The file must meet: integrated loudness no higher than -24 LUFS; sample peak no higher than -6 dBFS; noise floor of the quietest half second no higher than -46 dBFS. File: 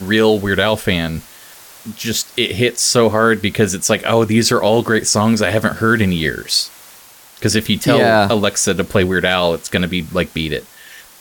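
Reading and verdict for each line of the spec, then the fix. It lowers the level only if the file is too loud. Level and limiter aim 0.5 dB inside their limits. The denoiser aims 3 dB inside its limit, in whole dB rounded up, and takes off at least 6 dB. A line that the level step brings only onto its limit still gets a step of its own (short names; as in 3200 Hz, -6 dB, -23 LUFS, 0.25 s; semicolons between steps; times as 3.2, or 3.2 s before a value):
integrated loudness -15.5 LUFS: fail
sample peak -2.0 dBFS: fail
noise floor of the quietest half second -42 dBFS: fail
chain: gain -9 dB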